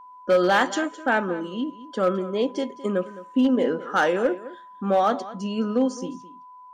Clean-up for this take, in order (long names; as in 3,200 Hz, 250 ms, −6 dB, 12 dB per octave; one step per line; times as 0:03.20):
clipped peaks rebuilt −13 dBFS
notch filter 1,000 Hz, Q 30
echo removal 212 ms −16.5 dB